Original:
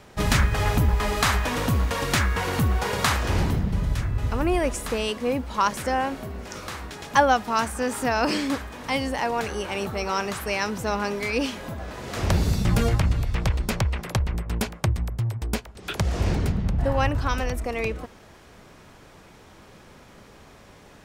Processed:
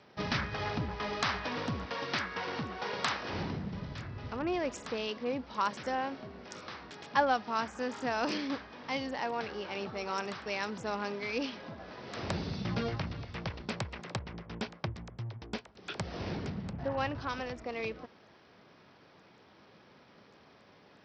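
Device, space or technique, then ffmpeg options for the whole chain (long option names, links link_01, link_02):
Bluetooth headset: -filter_complex "[0:a]asettb=1/sr,asplit=3[link_01][link_02][link_03];[link_01]atrim=end=1.854[link_04];[link_02]atrim=start=1.85:end=3.33,asetpts=PTS-STARTPTS,afade=type=in:duration=0.004:curve=qsin,afade=type=out:start_time=1.476:duration=0.004:curve=qsin,highpass=frequency=200:poles=1[link_05];[link_03]atrim=start=3.326[link_06];[link_04][link_05]acrossfade=duration=0.004:curve1=hsin:curve2=qsin[link_07];[link_07][link_06]acrossfade=duration=0.004:curve1=qsin:curve2=hsin,highpass=140,aresample=16000,aresample=44100,volume=-9dB" -ar 44100 -c:a sbc -b:a 64k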